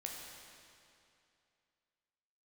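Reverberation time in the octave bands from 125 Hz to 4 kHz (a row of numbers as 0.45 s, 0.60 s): 2.6 s, 2.6 s, 2.6 s, 2.6 s, 2.5 s, 2.3 s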